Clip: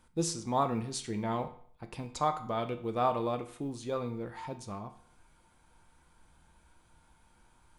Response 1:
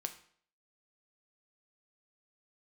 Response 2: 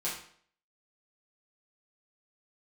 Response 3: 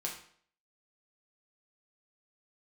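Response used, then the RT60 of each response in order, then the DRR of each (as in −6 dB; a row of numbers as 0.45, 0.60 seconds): 1; 0.55, 0.55, 0.55 seconds; 6.5, −8.5, −2.0 decibels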